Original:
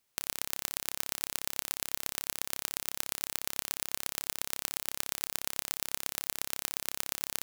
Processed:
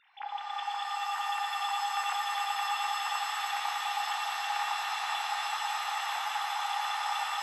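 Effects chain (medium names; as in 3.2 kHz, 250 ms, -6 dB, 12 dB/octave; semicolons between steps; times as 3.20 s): formants replaced by sine waves; compressor with a negative ratio -42 dBFS, ratio -1; echo with a slow build-up 106 ms, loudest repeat 8, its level -10 dB; pitch-shifted reverb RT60 3 s, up +7 st, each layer -2 dB, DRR -0.5 dB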